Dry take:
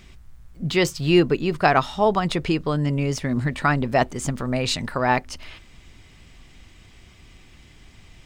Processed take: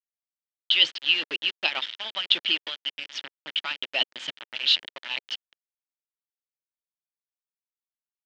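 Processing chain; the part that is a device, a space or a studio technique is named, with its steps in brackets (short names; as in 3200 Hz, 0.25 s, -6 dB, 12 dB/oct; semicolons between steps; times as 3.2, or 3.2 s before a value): 1.82–2.34 dynamic EQ 230 Hz, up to +4 dB, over -29 dBFS, Q 0.74; harmonic-percussive split harmonic -17 dB; resonant high shelf 2300 Hz +9.5 dB, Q 3; hand-held game console (bit-crush 4-bit; speaker cabinet 410–4100 Hz, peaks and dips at 440 Hz -10 dB, 730 Hz -9 dB, 1100 Hz -7 dB, 1800 Hz +4 dB, 3100 Hz +9 dB); gain -7.5 dB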